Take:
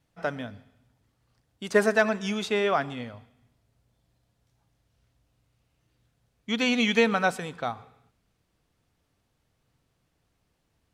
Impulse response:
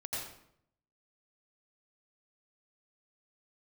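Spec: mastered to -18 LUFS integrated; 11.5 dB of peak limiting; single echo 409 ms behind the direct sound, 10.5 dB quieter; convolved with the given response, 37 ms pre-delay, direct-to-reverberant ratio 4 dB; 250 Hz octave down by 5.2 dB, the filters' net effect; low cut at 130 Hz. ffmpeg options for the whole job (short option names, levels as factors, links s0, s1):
-filter_complex "[0:a]highpass=130,equalizer=f=250:t=o:g=-5.5,alimiter=limit=0.1:level=0:latency=1,aecho=1:1:409:0.299,asplit=2[s0][s1];[1:a]atrim=start_sample=2205,adelay=37[s2];[s1][s2]afir=irnorm=-1:irlink=0,volume=0.501[s3];[s0][s3]amix=inputs=2:normalize=0,volume=4.47"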